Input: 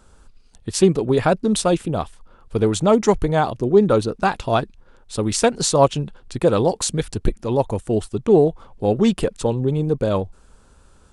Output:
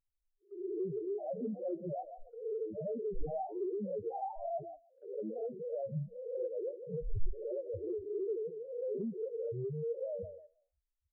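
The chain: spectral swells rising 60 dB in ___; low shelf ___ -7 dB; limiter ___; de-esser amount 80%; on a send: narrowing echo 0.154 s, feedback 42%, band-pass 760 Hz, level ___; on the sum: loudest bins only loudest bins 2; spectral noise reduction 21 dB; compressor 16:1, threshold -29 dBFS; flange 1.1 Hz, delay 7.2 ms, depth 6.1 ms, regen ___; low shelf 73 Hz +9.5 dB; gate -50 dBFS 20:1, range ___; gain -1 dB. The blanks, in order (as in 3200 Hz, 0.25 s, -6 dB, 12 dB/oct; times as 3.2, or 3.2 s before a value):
0.72 s, 350 Hz, -13 dBFS, -11 dB, +81%, -13 dB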